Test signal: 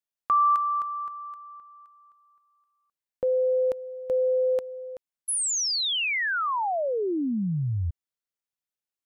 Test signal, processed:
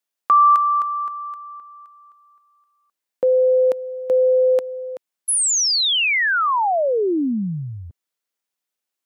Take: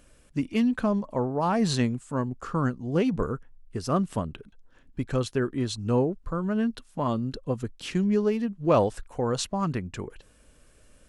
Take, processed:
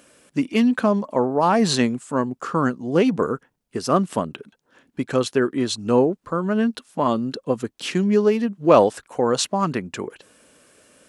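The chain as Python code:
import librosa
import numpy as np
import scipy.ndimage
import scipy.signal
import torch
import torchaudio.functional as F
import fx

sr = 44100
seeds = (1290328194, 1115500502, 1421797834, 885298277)

y = scipy.signal.sosfilt(scipy.signal.butter(2, 220.0, 'highpass', fs=sr, output='sos'), x)
y = F.gain(torch.from_numpy(y), 8.0).numpy()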